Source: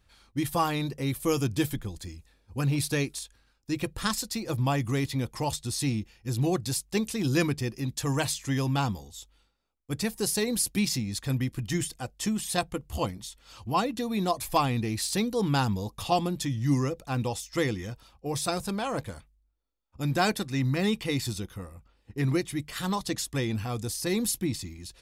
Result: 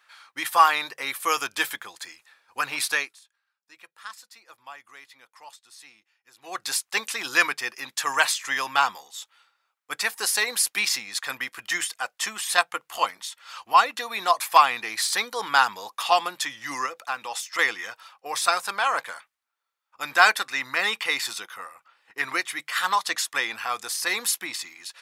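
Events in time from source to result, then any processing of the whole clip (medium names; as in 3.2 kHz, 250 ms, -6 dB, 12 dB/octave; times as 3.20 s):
2.89–6.69 s: dip -21 dB, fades 0.27 s
14.85–15.60 s: band-stop 2.7 kHz
16.86–17.59 s: compression, threshold -30 dBFS
whole clip: high-pass 920 Hz 12 dB/octave; peaking EQ 1.4 kHz +11.5 dB 2 oct; trim +4 dB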